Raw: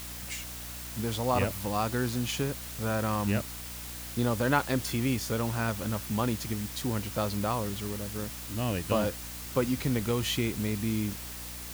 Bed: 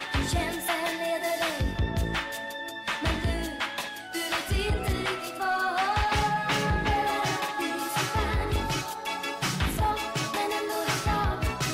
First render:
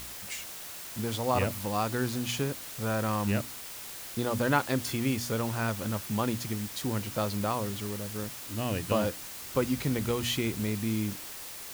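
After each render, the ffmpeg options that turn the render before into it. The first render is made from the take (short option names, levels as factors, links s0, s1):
-af "bandreject=f=60:t=h:w=4,bandreject=f=120:t=h:w=4,bandreject=f=180:t=h:w=4,bandreject=f=240:t=h:w=4,bandreject=f=300:t=h:w=4"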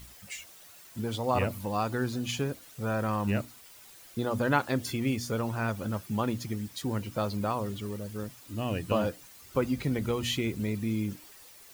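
-af "afftdn=nr=12:nf=-42"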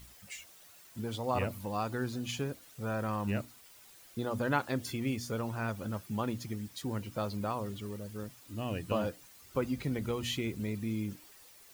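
-af "volume=0.596"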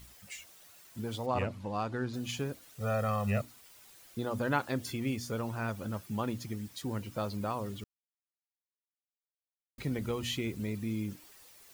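-filter_complex "[0:a]asettb=1/sr,asplit=3[s0][s1][s2];[s0]atrim=end=1.264[s3];[s1]atrim=start=1.26:end=2.14,asetpts=PTS-STARTPTS,afade=t=in:d=0.004:c=qsin,afade=t=out:st=0.876:d=0.004:c=qsin,adynamicsmooth=sensitivity=6.5:basefreq=4900[s4];[s2]atrim=start=2.136[s5];[s3][s4]acrossfade=d=0.004:c1=hsin:c2=qsin[s6];[s6][s5]acrossfade=d=0.004:c1=qsin:c2=hsin,asettb=1/sr,asplit=3[s7][s8][s9];[s7]atrim=end=2.804[s10];[s8]atrim=start=2.8:end=3.42,asetpts=PTS-STARTPTS,afade=t=in:d=0.004:c=qsin,afade=t=out:st=0.616:d=0.004:c=qsin,aecho=1:1:1.6:0.92,atrim=end_sample=27342[s11];[s9]atrim=start=3.416[s12];[s10][s11]acrossfade=d=0.004:c1=hsin:c2=qsin[s13];[s13][s12]acrossfade=d=0.004:c1=qsin:c2=hsin,asplit=3[s14][s15][s16];[s14]atrim=end=7.84,asetpts=PTS-STARTPTS,afade=t=out:st=7.836:d=0.004:c=hsin[s17];[s15]atrim=start=7.84:end=9.78,asetpts=PTS-STARTPTS,volume=0[s18];[s16]atrim=start=9.78,asetpts=PTS-STARTPTS,afade=t=in:d=0.004:c=hsin[s19];[s17][s18][s19]concat=n=3:v=0:a=1"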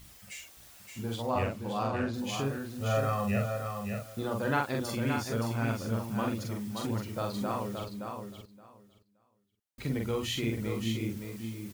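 -filter_complex "[0:a]asplit=2[s0][s1];[s1]adelay=44,volume=0.75[s2];[s0][s2]amix=inputs=2:normalize=0,aecho=1:1:571|1142|1713:0.501|0.0802|0.0128"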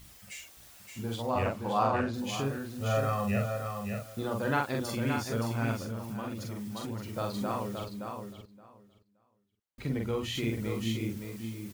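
-filter_complex "[0:a]asettb=1/sr,asplit=3[s0][s1][s2];[s0]atrim=end=1.454[s3];[s1]atrim=start=1.45:end=2.01,asetpts=PTS-STARTPTS,afade=t=in:d=0.004:c=qsin,afade=t=out:st=0.556:d=0.004:c=qsin,equalizer=f=940:t=o:w=1.6:g=7.5[s4];[s2]atrim=start=2.006[s5];[s3][s4]acrossfade=d=0.004:c1=hsin:c2=qsin[s6];[s6][s5]acrossfade=d=0.004:c1=qsin:c2=hsin,asettb=1/sr,asplit=3[s7][s8][s9];[s7]atrim=end=5.834[s10];[s8]atrim=start=5.83:end=7.16,asetpts=PTS-STARTPTS,afade=t=in:d=0.004:c=qsin,afade=t=out:st=1.326:d=0.004:c=qsin,acompressor=threshold=0.0178:ratio=2.5:attack=3.2:release=140:knee=1:detection=peak[s11];[s9]atrim=start=7.156[s12];[s10][s11]acrossfade=d=0.004:c1=hsin:c2=qsin[s13];[s13][s12]acrossfade=d=0.004:c1=qsin:c2=hsin,asettb=1/sr,asplit=3[s14][s15][s16];[s14]atrim=end=8.334[s17];[s15]atrim=start=8.33:end=10.35,asetpts=PTS-STARTPTS,afade=t=in:d=0.004:c=qsin,afade=t=out:st=2.016:d=0.004:c=qsin,highshelf=f=3900:g=-6.5[s18];[s16]atrim=start=10.346[s19];[s17][s18]acrossfade=d=0.004:c1=hsin:c2=qsin[s20];[s20][s19]acrossfade=d=0.004:c1=qsin:c2=hsin"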